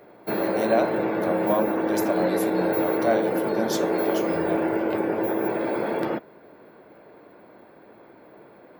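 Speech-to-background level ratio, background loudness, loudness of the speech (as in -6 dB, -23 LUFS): -4.0 dB, -25.0 LUFS, -29.0 LUFS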